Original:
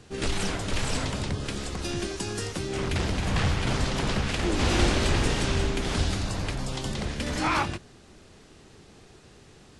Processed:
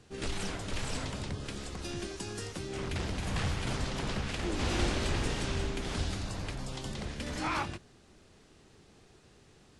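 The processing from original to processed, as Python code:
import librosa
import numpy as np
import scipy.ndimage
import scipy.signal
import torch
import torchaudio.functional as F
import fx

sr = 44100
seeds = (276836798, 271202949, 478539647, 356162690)

y = fx.high_shelf(x, sr, hz=10000.0, db=9.0, at=(3.18, 3.76))
y = y * 10.0 ** (-7.5 / 20.0)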